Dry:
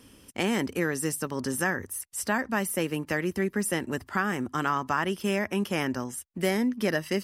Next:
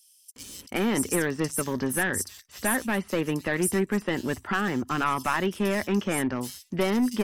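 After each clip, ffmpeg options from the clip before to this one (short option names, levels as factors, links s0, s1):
-filter_complex "[0:a]aeval=exprs='clip(val(0),-1,0.0631)':c=same,acrossover=split=4300[s0][s1];[s0]adelay=360[s2];[s2][s1]amix=inputs=2:normalize=0,volume=1.5"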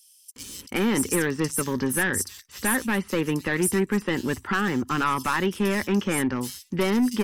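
-filter_complex "[0:a]equalizer=f=660:t=o:w=0.23:g=-14.5,asplit=2[s0][s1];[s1]aeval=exprs='0.251*sin(PI/2*1.58*val(0)/0.251)':c=same,volume=0.631[s2];[s0][s2]amix=inputs=2:normalize=0,volume=0.562"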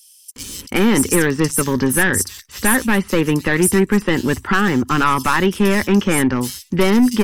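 -af "lowshelf=f=64:g=8.5,volume=2.51"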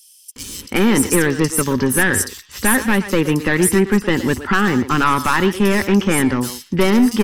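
-filter_complex "[0:a]asplit=2[s0][s1];[s1]adelay=120,highpass=300,lowpass=3400,asoftclip=type=hard:threshold=0.188,volume=0.316[s2];[s0][s2]amix=inputs=2:normalize=0"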